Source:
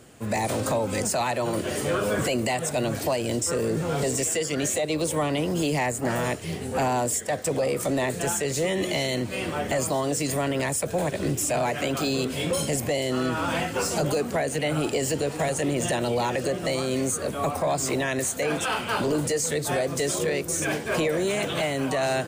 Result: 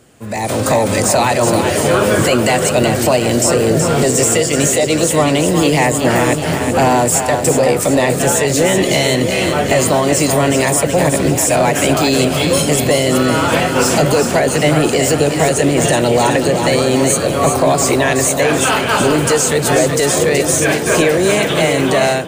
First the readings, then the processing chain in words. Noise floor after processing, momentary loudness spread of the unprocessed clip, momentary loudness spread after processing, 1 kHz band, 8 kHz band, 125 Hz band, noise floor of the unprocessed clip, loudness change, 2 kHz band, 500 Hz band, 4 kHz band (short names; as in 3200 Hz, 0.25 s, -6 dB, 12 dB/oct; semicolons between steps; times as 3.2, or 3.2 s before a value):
-19 dBFS, 2 LU, 1 LU, +12.5 dB, +12.5 dB, +12.5 dB, -34 dBFS, +12.5 dB, +12.5 dB, +12.5 dB, +12.5 dB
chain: split-band echo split 570 Hz, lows 0.638 s, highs 0.375 s, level -6 dB; AGC gain up to 11.5 dB; gain +1.5 dB